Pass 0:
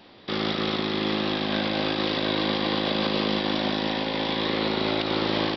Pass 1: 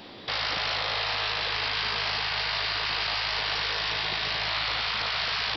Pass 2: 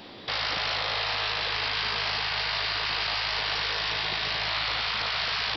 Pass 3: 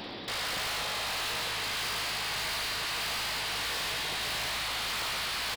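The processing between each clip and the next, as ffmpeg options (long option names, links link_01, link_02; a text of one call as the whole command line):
ffmpeg -i in.wav -filter_complex "[0:a]highshelf=frequency=4700:gain=5.5,afftfilt=real='re*lt(hypot(re,im),0.0891)':imag='im*lt(hypot(re,im),0.0891)':win_size=1024:overlap=0.75,asplit=2[link_01][link_02];[link_02]alimiter=level_in=4dB:limit=-24dB:level=0:latency=1,volume=-4dB,volume=-1.5dB[link_03];[link_01][link_03]amix=inputs=2:normalize=0" out.wav
ffmpeg -i in.wav -af anull out.wav
ffmpeg -i in.wav -af "tremolo=f=1.6:d=0.35,aecho=1:1:108:0.376,asoftclip=type=hard:threshold=-37dB,volume=5dB" out.wav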